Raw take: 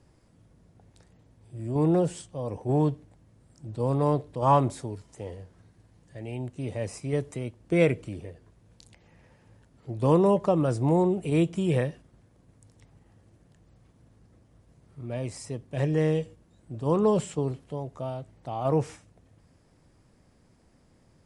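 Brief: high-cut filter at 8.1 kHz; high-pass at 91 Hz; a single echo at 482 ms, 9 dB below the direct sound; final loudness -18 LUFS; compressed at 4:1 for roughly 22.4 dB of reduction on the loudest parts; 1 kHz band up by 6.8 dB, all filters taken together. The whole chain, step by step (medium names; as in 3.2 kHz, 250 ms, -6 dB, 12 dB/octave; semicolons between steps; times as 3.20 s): high-pass 91 Hz; low-pass 8.1 kHz; peaking EQ 1 kHz +8 dB; compression 4:1, threshold -38 dBFS; delay 482 ms -9 dB; trim +23 dB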